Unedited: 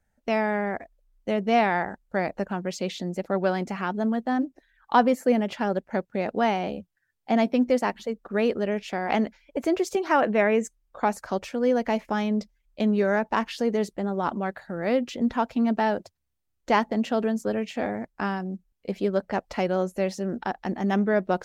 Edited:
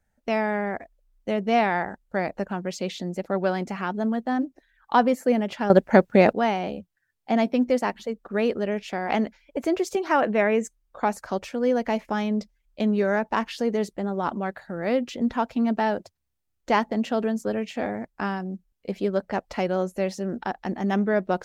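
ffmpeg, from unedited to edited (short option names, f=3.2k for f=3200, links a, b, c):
-filter_complex "[0:a]asplit=3[a][b][c];[a]atrim=end=5.702[d];[b]atrim=start=5.698:end=6.332,asetpts=PTS-STARTPTS,volume=11.5dB[e];[c]atrim=start=6.328[f];[d][e]acrossfade=d=0.004:c1=hsin:c2=hsin[g];[g][f]acrossfade=d=0.004:c1=hsin:c2=hsin"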